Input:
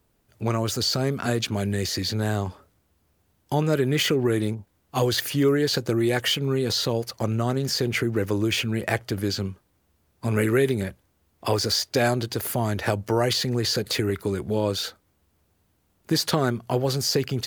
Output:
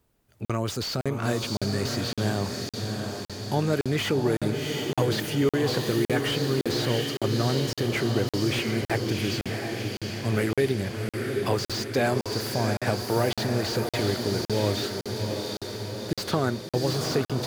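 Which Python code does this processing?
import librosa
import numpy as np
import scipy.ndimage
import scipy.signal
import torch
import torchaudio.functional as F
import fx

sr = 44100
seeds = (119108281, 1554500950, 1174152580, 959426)

y = fx.echo_diffused(x, sr, ms=725, feedback_pct=63, wet_db=-5)
y = fx.buffer_crackle(y, sr, first_s=0.45, period_s=0.56, block=2048, kind='zero')
y = fx.slew_limit(y, sr, full_power_hz=190.0)
y = y * 10.0 ** (-2.5 / 20.0)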